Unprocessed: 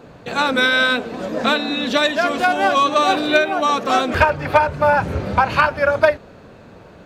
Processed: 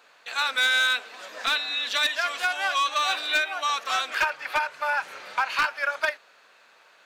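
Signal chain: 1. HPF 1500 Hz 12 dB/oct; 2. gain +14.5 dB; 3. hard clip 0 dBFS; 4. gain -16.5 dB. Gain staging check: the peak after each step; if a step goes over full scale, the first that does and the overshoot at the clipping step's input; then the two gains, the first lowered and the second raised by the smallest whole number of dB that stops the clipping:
-6.0, +8.5, 0.0, -16.5 dBFS; step 2, 8.5 dB; step 2 +5.5 dB, step 4 -7.5 dB

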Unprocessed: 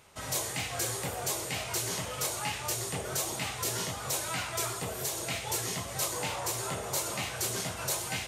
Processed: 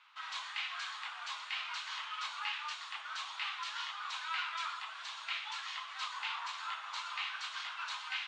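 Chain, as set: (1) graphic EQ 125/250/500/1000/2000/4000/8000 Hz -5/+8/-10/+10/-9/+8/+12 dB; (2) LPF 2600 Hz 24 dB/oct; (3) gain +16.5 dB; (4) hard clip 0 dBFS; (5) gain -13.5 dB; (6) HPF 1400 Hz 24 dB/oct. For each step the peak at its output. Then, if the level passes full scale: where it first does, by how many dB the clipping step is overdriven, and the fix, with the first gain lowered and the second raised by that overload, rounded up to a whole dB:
-8.5, -21.0, -4.5, -4.5, -18.0, -23.5 dBFS; no overload

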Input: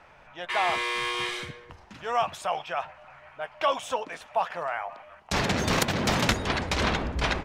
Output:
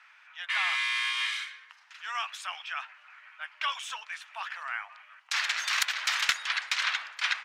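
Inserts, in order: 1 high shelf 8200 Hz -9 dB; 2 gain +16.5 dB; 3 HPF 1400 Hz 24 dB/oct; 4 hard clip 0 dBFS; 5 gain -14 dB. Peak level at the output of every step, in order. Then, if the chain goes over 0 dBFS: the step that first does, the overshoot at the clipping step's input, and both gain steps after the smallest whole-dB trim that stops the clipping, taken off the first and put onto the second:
-11.5, +5.0, +5.0, 0.0, -14.0 dBFS; step 2, 5.0 dB; step 2 +11.5 dB, step 5 -9 dB

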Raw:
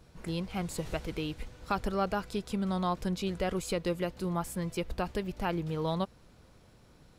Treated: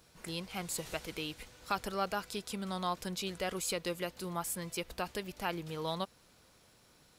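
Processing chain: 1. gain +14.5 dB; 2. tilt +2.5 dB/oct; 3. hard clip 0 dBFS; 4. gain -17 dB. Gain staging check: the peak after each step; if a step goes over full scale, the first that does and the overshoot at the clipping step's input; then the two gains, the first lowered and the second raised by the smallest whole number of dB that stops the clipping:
-3.5, -2.5, -2.5, -19.5 dBFS; no overload

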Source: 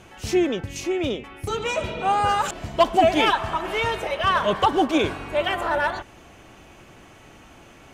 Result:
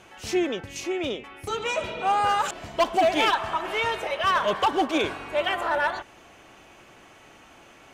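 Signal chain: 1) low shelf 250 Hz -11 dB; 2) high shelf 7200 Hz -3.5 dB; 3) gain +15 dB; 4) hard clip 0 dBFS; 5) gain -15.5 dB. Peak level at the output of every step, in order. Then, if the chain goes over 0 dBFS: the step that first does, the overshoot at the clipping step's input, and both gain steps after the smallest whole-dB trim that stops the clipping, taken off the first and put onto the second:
-7.0, -7.0, +8.0, 0.0, -15.5 dBFS; step 3, 8.0 dB; step 3 +7 dB, step 5 -7.5 dB

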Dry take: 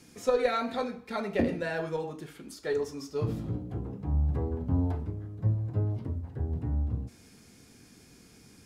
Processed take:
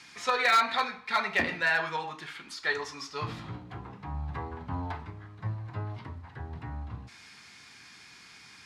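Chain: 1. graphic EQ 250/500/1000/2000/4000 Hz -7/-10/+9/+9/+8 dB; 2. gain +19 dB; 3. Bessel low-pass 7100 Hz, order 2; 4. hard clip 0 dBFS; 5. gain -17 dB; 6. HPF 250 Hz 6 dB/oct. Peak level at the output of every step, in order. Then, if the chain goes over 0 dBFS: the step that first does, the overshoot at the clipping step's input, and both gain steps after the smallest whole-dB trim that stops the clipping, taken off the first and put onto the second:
-10.5, +8.5, +8.5, 0.0, -17.0, -15.0 dBFS; step 2, 8.5 dB; step 2 +10 dB, step 5 -8 dB

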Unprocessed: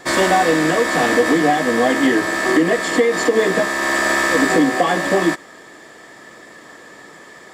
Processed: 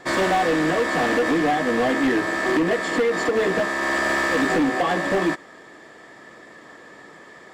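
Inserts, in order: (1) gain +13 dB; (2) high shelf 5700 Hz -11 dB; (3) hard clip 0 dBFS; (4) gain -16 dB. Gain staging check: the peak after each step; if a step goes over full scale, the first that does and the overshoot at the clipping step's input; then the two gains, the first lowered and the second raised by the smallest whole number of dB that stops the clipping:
+8.5, +8.0, 0.0, -16.0 dBFS; step 1, 8.0 dB; step 1 +5 dB, step 4 -8 dB

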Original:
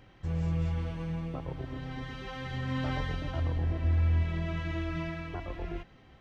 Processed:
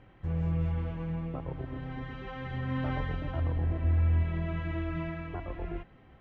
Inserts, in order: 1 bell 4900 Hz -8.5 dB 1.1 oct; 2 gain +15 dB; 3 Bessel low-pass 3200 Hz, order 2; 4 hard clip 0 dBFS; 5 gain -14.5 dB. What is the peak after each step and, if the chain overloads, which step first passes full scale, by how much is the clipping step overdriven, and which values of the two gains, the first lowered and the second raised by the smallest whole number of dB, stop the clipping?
-19.0, -4.0, -4.0, -4.0, -18.5 dBFS; no overload

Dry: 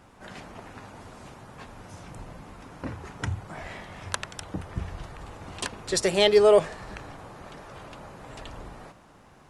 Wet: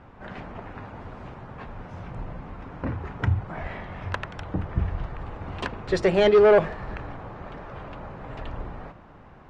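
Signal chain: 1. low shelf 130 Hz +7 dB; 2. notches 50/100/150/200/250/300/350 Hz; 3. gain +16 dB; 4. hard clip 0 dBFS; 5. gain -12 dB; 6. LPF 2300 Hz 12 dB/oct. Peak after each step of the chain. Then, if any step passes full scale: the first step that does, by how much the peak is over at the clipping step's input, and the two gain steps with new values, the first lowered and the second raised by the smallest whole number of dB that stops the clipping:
-6.5, -6.5, +9.5, 0.0, -12.0, -11.5 dBFS; step 3, 9.5 dB; step 3 +6 dB, step 5 -2 dB

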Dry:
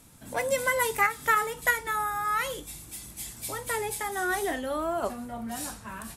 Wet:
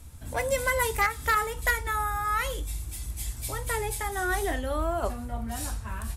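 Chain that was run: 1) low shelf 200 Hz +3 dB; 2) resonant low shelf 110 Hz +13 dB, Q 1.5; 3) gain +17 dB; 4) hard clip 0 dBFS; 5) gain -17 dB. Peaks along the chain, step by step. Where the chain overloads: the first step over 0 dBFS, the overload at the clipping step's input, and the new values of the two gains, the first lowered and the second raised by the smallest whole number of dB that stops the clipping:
-10.5, -10.0, +7.0, 0.0, -17.0 dBFS; step 3, 7.0 dB; step 3 +10 dB, step 5 -10 dB

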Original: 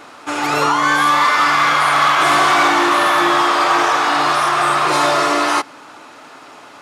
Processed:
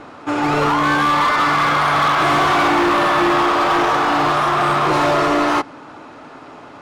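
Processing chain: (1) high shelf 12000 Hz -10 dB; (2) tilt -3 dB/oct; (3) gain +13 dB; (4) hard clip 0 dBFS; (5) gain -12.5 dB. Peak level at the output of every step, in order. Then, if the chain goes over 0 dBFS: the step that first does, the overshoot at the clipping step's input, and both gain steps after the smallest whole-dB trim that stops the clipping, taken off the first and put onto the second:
-4.5, -3.5, +9.5, 0.0, -12.5 dBFS; step 3, 9.5 dB; step 3 +3 dB, step 5 -2.5 dB

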